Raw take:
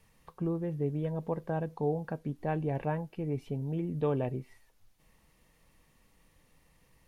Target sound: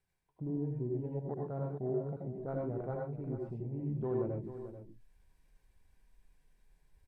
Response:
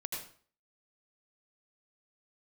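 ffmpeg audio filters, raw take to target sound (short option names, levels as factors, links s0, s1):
-filter_complex "[0:a]asetrate=38170,aresample=44100,atempo=1.15535,areverse,acompressor=mode=upward:threshold=0.00631:ratio=2.5,areverse,afwtdn=0.0126,aecho=1:1:439:0.266[s0];[1:a]atrim=start_sample=2205,atrim=end_sample=6174[s1];[s0][s1]afir=irnorm=-1:irlink=0,volume=0.596"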